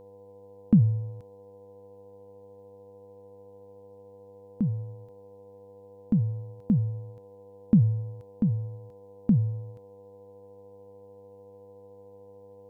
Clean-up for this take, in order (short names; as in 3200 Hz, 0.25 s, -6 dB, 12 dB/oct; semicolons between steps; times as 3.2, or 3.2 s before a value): de-hum 100.7 Hz, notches 10; notch 490 Hz, Q 30